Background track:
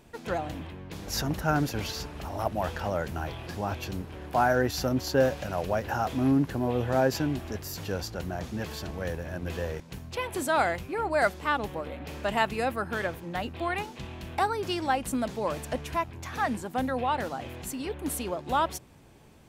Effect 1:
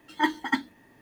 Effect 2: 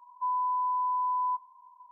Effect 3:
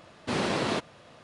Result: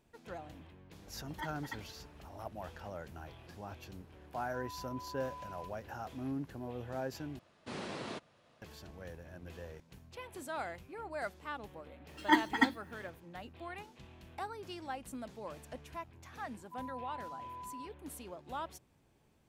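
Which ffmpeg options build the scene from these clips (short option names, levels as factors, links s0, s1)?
-filter_complex "[1:a]asplit=2[s0][s1];[2:a]asplit=2[s2][s3];[0:a]volume=0.178[s4];[s0]highpass=450[s5];[s2]lowpass=1000[s6];[3:a]asoftclip=type=hard:threshold=0.112[s7];[s3]asuperpass=centerf=880:order=4:qfactor=2.9[s8];[s4]asplit=2[s9][s10];[s9]atrim=end=7.394[s11];[s7]atrim=end=1.23,asetpts=PTS-STARTPTS,volume=0.2[s12];[s10]atrim=start=8.616[s13];[s5]atrim=end=1.01,asetpts=PTS-STARTPTS,volume=0.133,afade=t=in:d=0.004:c=hsin,afade=t=out:st=1.006:d=0.004:c=hsin,adelay=1190[s14];[s6]atrim=end=1.91,asetpts=PTS-STARTPTS,volume=0.15,afade=t=in:d=0.004:c=hsin,afade=t=out:st=1.906:d=0.004:c=hsin,adelay=4320[s15];[s1]atrim=end=1.01,asetpts=PTS-STARTPTS,volume=0.794,afade=t=in:d=0.004:c=hsin,afade=t=out:st=1.006:d=0.004:c=hsin,adelay=12090[s16];[s8]atrim=end=1.91,asetpts=PTS-STARTPTS,volume=0.141,afade=t=in:d=0.004:c=hsin,afade=t=out:st=1.906:d=0.004:c=hsin,adelay=16500[s17];[s11][s12]acrossfade=d=0.004:c1=hsin:c2=hsin[s18];[s18][s13]acrossfade=d=0.004:c1=hsin:c2=hsin[s19];[s19][s14][s15][s16][s17]amix=inputs=5:normalize=0"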